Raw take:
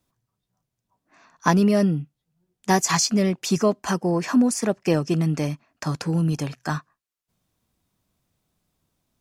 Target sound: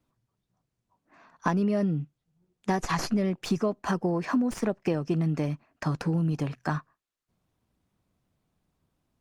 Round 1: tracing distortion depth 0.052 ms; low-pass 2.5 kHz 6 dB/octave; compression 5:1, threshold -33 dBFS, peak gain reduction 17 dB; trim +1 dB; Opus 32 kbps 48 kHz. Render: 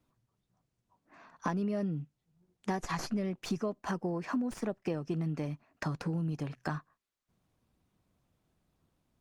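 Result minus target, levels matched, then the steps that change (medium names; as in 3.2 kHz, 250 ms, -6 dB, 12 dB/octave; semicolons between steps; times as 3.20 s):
compression: peak gain reduction +7 dB
change: compression 5:1, threshold -24 dBFS, peak gain reduction 10 dB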